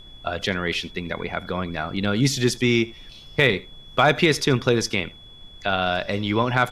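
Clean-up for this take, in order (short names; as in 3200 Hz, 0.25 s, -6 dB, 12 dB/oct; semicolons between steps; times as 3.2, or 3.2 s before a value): clip repair -6.5 dBFS; notch 3400 Hz, Q 30; noise print and reduce 22 dB; inverse comb 81 ms -21.5 dB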